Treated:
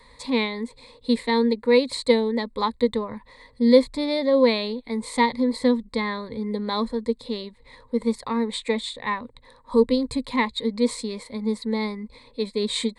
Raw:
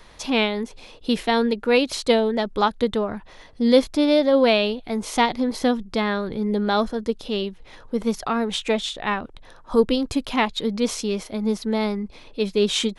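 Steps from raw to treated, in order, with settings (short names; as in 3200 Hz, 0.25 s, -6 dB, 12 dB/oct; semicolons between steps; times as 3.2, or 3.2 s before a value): ripple EQ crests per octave 0.98, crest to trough 16 dB; gain -6.5 dB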